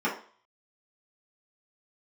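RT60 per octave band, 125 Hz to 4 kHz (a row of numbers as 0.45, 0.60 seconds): 0.30, 0.40, 0.45, 0.50, 0.40, 0.45 seconds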